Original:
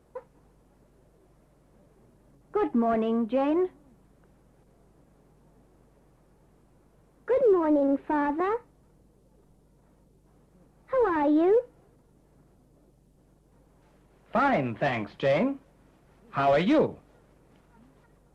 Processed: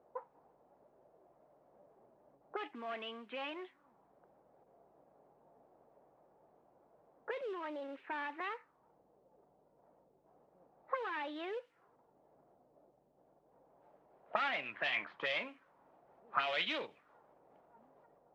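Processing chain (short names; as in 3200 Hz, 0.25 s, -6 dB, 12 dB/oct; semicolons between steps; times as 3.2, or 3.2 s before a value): auto-wah 680–3000 Hz, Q 2.3, up, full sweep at -23 dBFS; gain +3 dB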